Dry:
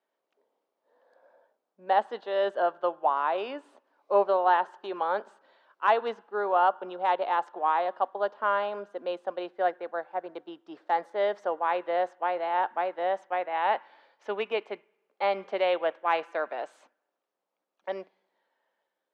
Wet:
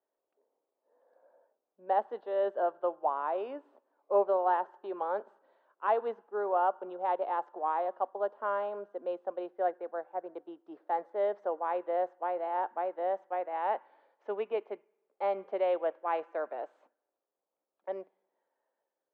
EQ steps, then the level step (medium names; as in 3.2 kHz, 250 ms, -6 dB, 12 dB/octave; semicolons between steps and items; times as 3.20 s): band-pass filter 400 Hz, Q 0.81; bass shelf 440 Hz -4.5 dB; 0.0 dB